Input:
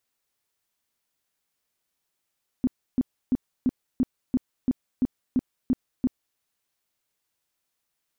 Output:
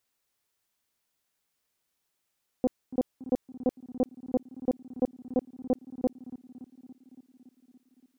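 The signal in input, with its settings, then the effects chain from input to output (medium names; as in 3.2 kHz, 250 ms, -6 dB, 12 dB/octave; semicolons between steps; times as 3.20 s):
tone bursts 254 Hz, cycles 8, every 0.34 s, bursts 11, -17.5 dBFS
tape echo 283 ms, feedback 81%, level -14 dB, low-pass 1.1 kHz; loudspeaker Doppler distortion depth 0.71 ms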